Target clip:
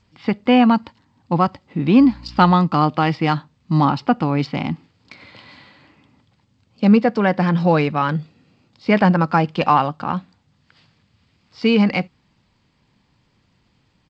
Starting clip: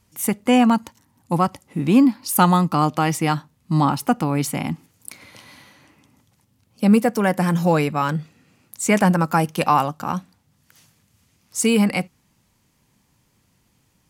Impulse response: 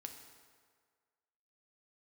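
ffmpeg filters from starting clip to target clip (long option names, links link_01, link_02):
-filter_complex "[0:a]asettb=1/sr,asplit=3[link_01][link_02][link_03];[link_01]atrim=end=1.994[link_04];[link_02]atrim=start=1.99:end=2.54,asetpts=PTS-STARTPTS,afade=type=in:duration=0.004:curve=qsin,afade=type=out:start_time=0.546:duration=0.004:curve=qsin,aeval=exprs='val(0)+0.01*(sin(2*PI*60*n/s)+sin(2*PI*2*60*n/s)/2+sin(2*PI*3*60*n/s)/3+sin(2*PI*4*60*n/s)/4+sin(2*PI*5*60*n/s)/5)':channel_layout=same[link_05];[link_03]atrim=start=2.536[link_06];[link_04][link_05]acrossfade=duration=0.004:curve1=hsin:curve2=qsin[link_07];[link_07][link_06]acrossfade=duration=0.004:curve1=qsin:curve2=hsin,asplit=3[link_08][link_09][link_10];[link_08]afade=type=out:start_time=8.17:duration=0.02[link_11];[link_09]equalizer=frequency=1800:width_type=o:width=1.4:gain=-6.5,afade=type=in:start_time=8.17:duration=0.02,afade=type=out:start_time=8.91:duration=0.02[link_12];[link_10]afade=type=in:start_time=8.91:duration=0.02[link_13];[link_11][link_12][link_13]amix=inputs=3:normalize=0,aresample=11025,aresample=44100,volume=2dB" -ar 16000 -c:a g722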